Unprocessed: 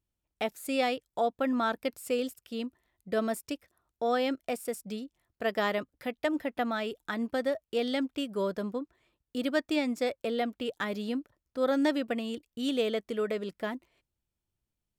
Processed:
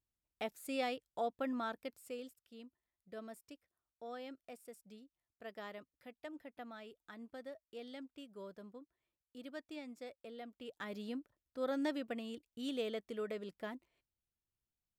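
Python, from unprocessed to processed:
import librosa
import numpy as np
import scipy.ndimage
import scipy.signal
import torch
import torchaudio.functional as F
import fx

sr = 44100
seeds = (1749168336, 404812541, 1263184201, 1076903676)

y = fx.gain(x, sr, db=fx.line((1.42, -9.0), (2.53, -19.0), (10.42, -19.0), (10.97, -10.0)))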